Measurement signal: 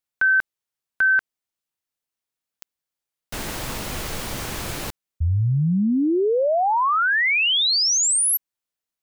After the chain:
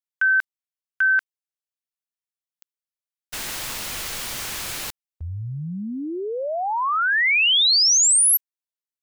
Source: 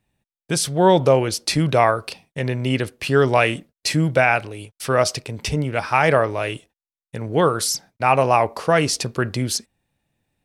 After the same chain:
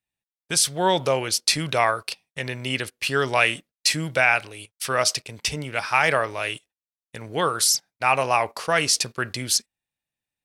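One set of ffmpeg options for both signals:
-af "agate=range=-13dB:threshold=-38dB:ratio=16:release=77:detection=peak,tiltshelf=f=970:g=-7,volume=-3.5dB"

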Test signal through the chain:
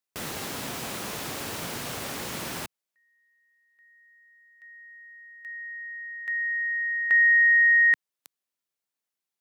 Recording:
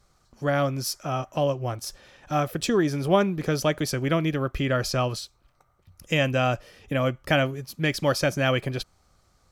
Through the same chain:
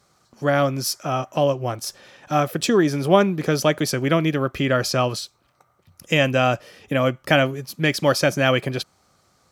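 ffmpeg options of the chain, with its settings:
-af "highpass=130,volume=5dB"

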